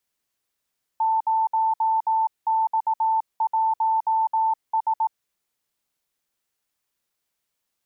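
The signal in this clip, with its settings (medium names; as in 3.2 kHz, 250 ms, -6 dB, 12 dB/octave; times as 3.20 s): Morse "0X1S" 18 wpm 888 Hz -18 dBFS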